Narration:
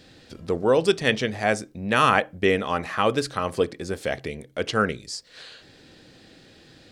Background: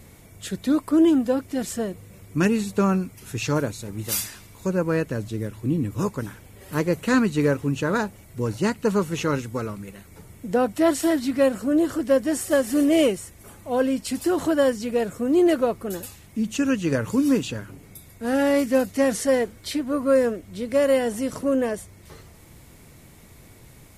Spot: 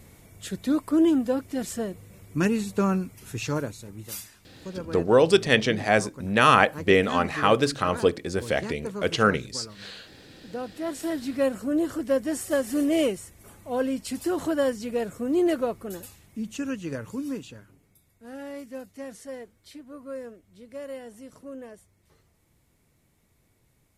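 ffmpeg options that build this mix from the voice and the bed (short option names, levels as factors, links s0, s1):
-filter_complex "[0:a]adelay=4450,volume=1.19[s0];[1:a]volume=1.88,afade=t=out:st=3.28:d=0.98:silence=0.316228,afade=t=in:st=10.82:d=0.64:silence=0.375837,afade=t=out:st=15.5:d=2.44:silence=0.211349[s1];[s0][s1]amix=inputs=2:normalize=0"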